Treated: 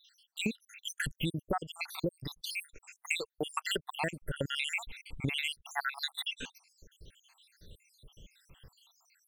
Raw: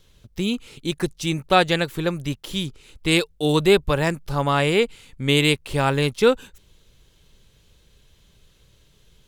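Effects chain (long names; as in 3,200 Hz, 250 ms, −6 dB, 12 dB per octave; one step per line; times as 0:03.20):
time-frequency cells dropped at random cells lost 80%
0:02.24–0:04.45: low-shelf EQ 350 Hz −7.5 dB
downward compressor 20 to 1, threshold −34 dBFS, peak gain reduction 21.5 dB
level +4.5 dB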